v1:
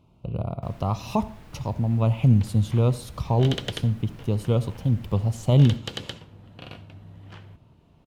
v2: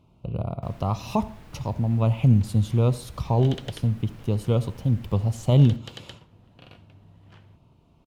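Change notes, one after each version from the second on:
second sound -8.0 dB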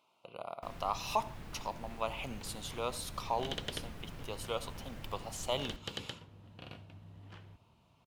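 speech: add high-pass 910 Hz 12 dB/octave

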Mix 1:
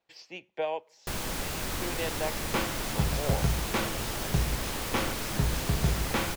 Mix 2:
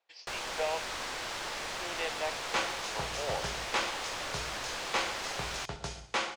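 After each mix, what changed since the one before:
first sound: entry -0.80 s; second sound: remove distance through air 100 m; master: add three-band isolator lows -17 dB, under 460 Hz, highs -21 dB, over 7.4 kHz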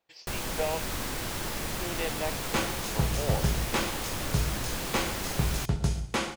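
master: remove three-band isolator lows -17 dB, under 460 Hz, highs -21 dB, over 7.4 kHz

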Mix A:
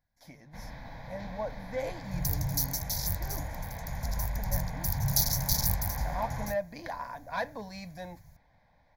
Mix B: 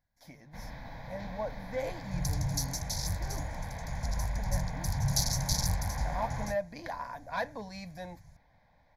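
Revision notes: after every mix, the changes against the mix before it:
second sound: add low-pass 10 kHz 24 dB/octave; reverb: off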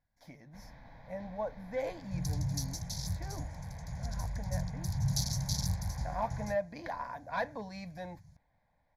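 first sound -9.0 dB; second sound: add high-pass 64 Hz; master: add treble shelf 4.4 kHz -8 dB

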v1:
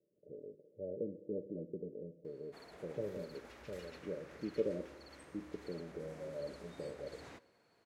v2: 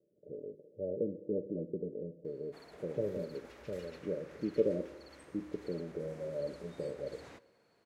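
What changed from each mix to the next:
speech +5.5 dB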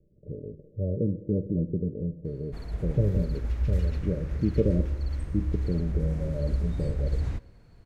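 background +5.0 dB; master: remove high-pass 420 Hz 12 dB/octave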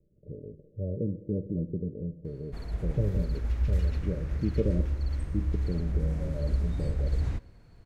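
speech -4.0 dB

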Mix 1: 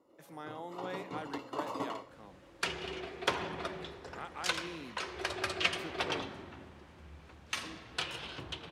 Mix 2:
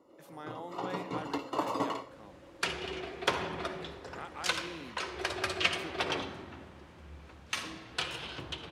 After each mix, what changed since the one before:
first sound +5.5 dB; second sound: send on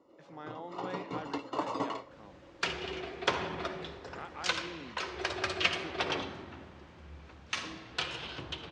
speech: add distance through air 110 m; first sound: send -10.5 dB; master: add low-pass 7 kHz 24 dB/octave

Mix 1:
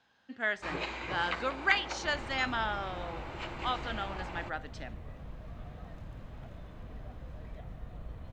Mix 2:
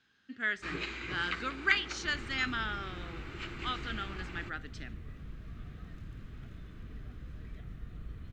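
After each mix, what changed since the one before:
master: add high-order bell 720 Hz -13.5 dB 1.2 oct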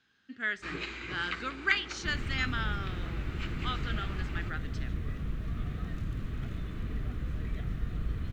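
second sound +10.5 dB

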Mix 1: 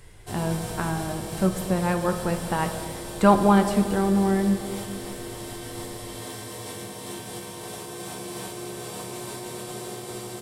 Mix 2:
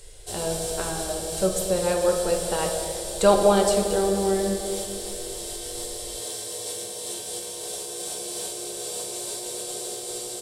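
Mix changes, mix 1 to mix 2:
speech: send +6.5 dB; master: add graphic EQ 125/250/500/1000/2000/4000/8000 Hz -11/-12/+9/-8/-6/+6/+9 dB

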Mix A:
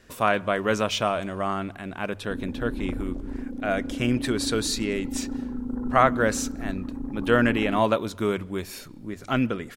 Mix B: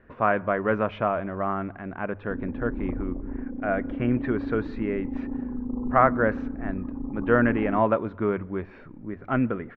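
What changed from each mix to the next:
background: add brick-wall FIR low-pass 1.3 kHz; master: add low-pass 1.9 kHz 24 dB/octave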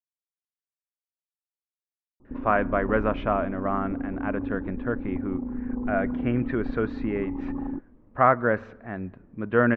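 speech: entry +2.25 s

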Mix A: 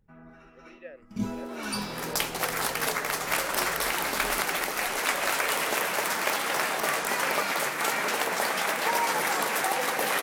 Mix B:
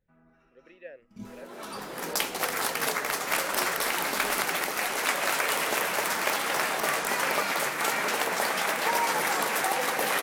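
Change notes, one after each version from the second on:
first sound -12.0 dB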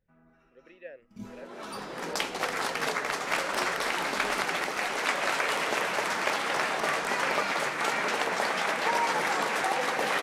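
second sound: add distance through air 67 m

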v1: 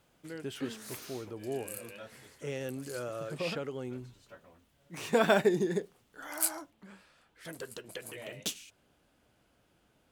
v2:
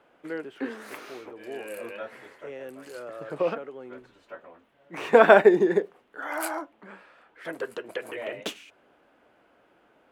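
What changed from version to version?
background +11.5 dB; master: add three-band isolator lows -19 dB, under 270 Hz, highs -19 dB, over 2.5 kHz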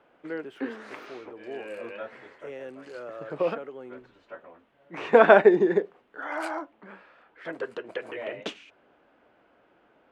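background: add distance through air 110 m

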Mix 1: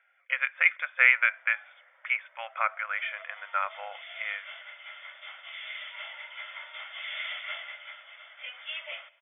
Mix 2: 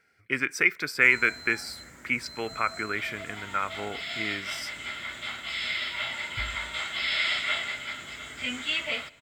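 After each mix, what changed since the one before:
background +8.5 dB; master: remove brick-wall FIR band-pass 510–3600 Hz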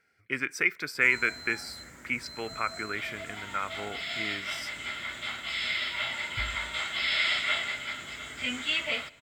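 speech -3.5 dB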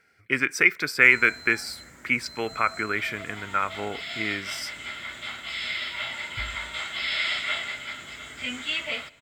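speech +7.0 dB

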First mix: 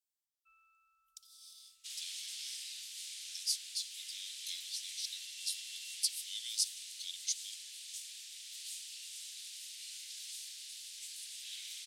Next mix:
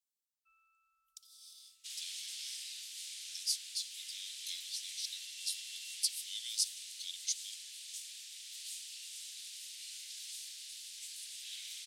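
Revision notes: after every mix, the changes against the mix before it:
first sound -3.5 dB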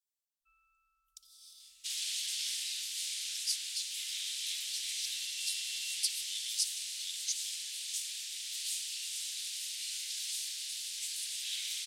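first sound: remove high-pass 96 Hz 12 dB/octave; second sound +8.0 dB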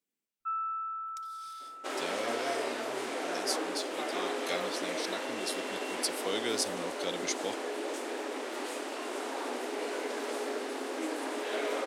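second sound -10.0 dB; master: remove inverse Chebyshev band-stop 180–960 Hz, stop band 70 dB

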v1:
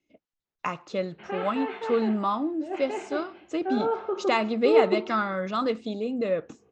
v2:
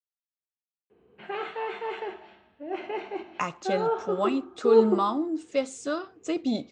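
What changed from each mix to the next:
speech: entry +2.75 s; master: remove distance through air 110 m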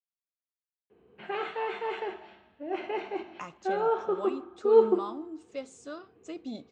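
speech -11.5 dB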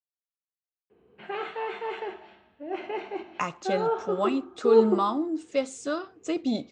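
speech +11.5 dB

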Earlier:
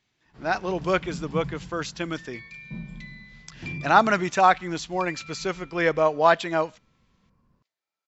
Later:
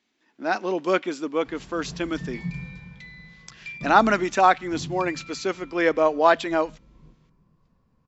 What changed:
speech: add resonant low shelf 180 Hz -10.5 dB, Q 3; first sound: entry +1.10 s

